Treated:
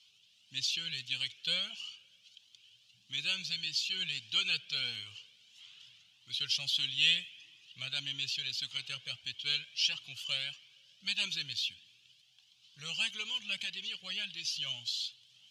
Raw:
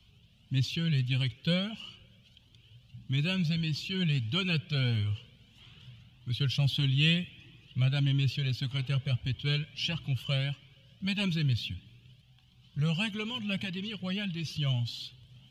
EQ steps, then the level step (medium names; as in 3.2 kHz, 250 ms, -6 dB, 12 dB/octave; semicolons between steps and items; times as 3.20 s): band-pass filter 5.8 kHz, Q 1.3; +8.5 dB